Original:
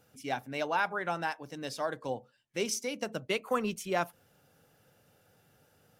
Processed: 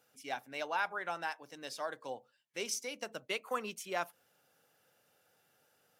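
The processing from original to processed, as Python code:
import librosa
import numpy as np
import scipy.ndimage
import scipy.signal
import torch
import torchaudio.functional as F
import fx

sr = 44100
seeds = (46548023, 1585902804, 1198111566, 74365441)

y = fx.highpass(x, sr, hz=640.0, slope=6)
y = y * librosa.db_to_amplitude(-3.0)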